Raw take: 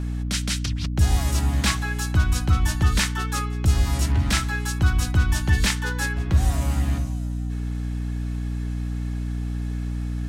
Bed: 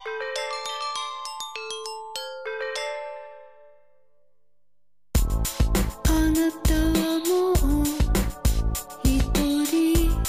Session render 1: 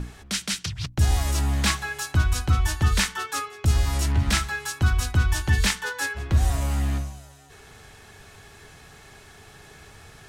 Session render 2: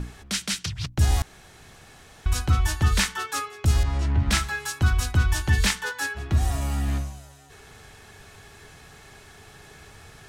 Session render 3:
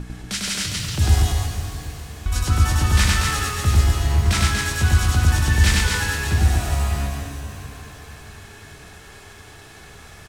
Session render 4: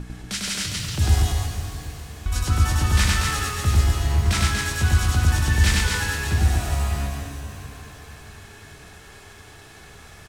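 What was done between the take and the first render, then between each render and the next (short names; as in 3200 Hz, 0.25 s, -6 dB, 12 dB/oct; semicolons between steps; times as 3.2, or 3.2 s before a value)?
notches 60/120/180/240/300/360 Hz
1.22–2.26 room tone; 3.83–4.31 tape spacing loss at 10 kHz 21 dB; 5.91–6.88 notch comb 520 Hz
loudspeakers at several distances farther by 34 m -1 dB, 82 m -4 dB; shimmer reverb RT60 3.2 s, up +7 st, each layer -8 dB, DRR 4 dB
gain -2 dB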